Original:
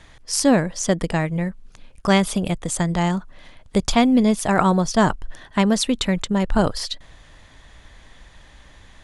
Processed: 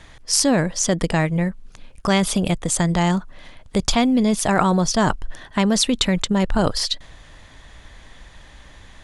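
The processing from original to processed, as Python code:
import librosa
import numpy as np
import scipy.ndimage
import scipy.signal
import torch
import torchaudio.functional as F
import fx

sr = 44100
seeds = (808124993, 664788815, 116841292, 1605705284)

p1 = fx.dynamic_eq(x, sr, hz=4800.0, q=0.74, threshold_db=-37.0, ratio=4.0, max_db=3)
p2 = fx.over_compress(p1, sr, threshold_db=-20.0, ratio=-1.0)
p3 = p1 + F.gain(torch.from_numpy(p2), 0.0).numpy()
y = F.gain(torch.from_numpy(p3), -4.5).numpy()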